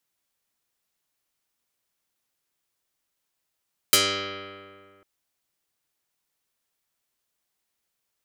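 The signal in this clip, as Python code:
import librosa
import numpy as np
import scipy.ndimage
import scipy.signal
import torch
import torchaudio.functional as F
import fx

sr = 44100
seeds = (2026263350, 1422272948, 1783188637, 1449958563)

y = fx.pluck(sr, length_s=1.1, note=43, decay_s=2.1, pick=0.11, brightness='dark')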